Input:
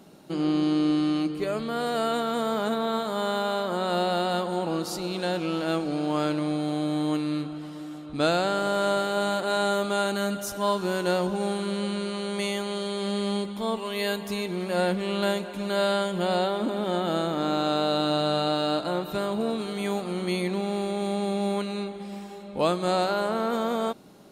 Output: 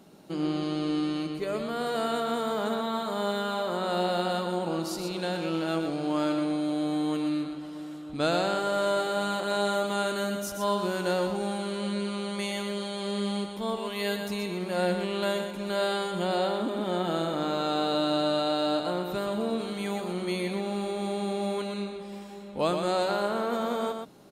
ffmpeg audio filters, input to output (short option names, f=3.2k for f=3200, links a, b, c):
-af "aecho=1:1:123:0.473,volume=-3dB"